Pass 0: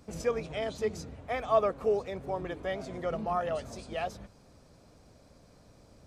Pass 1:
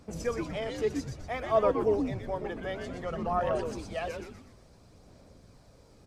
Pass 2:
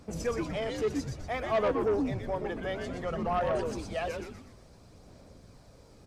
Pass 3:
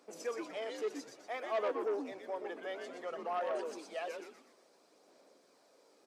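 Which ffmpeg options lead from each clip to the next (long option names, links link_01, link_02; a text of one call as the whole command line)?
ffmpeg -i in.wav -filter_complex "[0:a]aphaser=in_gain=1:out_gain=1:delay=2.4:decay=0.33:speed=0.58:type=sinusoidal,asplit=7[link_01][link_02][link_03][link_04][link_05][link_06][link_07];[link_02]adelay=122,afreqshift=-150,volume=-5dB[link_08];[link_03]adelay=244,afreqshift=-300,volume=-11.9dB[link_09];[link_04]adelay=366,afreqshift=-450,volume=-18.9dB[link_10];[link_05]adelay=488,afreqshift=-600,volume=-25.8dB[link_11];[link_06]adelay=610,afreqshift=-750,volume=-32.7dB[link_12];[link_07]adelay=732,afreqshift=-900,volume=-39.7dB[link_13];[link_01][link_08][link_09][link_10][link_11][link_12][link_13]amix=inputs=7:normalize=0,volume=-1.5dB" out.wav
ffmpeg -i in.wav -af "asoftclip=type=tanh:threshold=-24dB,volume=2dB" out.wav
ffmpeg -i in.wav -af "highpass=frequency=320:width=0.5412,highpass=frequency=320:width=1.3066,volume=-6.5dB" out.wav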